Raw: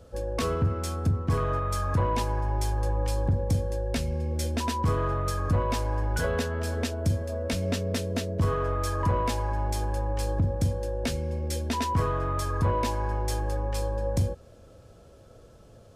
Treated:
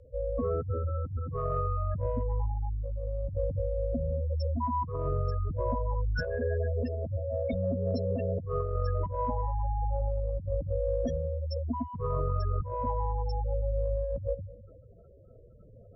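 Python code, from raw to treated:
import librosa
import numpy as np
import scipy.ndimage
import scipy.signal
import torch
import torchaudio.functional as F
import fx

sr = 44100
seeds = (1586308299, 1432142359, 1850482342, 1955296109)

y = fx.high_shelf(x, sr, hz=2100.0, db=6.0)
y = fx.echo_feedback(y, sr, ms=215, feedback_pct=23, wet_db=-17)
y = fx.dynamic_eq(y, sr, hz=590.0, q=2.9, threshold_db=-42.0, ratio=4.0, max_db=5)
y = fx.spec_gate(y, sr, threshold_db=-10, keep='strong')
y = 10.0 ** (-11.5 / 20.0) * np.tanh(y / 10.0 ** (-11.5 / 20.0))
y = fx.rotary(y, sr, hz=0.6)
y = fx.over_compress(y, sr, threshold_db=-29.0, ratio=-0.5)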